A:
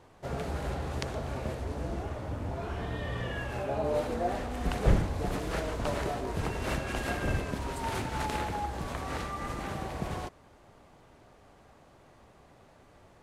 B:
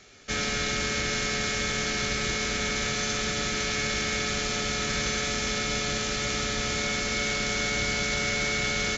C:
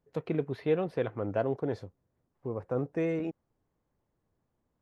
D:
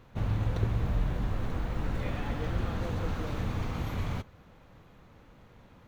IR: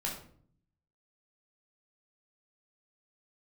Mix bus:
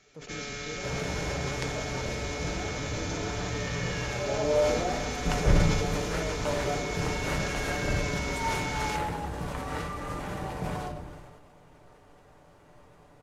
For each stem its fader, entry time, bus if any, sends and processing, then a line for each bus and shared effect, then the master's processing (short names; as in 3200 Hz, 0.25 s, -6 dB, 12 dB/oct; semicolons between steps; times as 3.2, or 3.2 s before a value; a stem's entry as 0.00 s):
-3.5 dB, 0.60 s, send -4.5 dB, dry
-9.5 dB, 0.00 s, no send, dry
-9.5 dB, 0.00 s, no send, limiter -26 dBFS, peak gain reduction 10 dB
off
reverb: on, RT60 0.55 s, pre-delay 11 ms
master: bell 4000 Hz -2.5 dB; comb 6.8 ms, depth 37%; sustainer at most 34 dB/s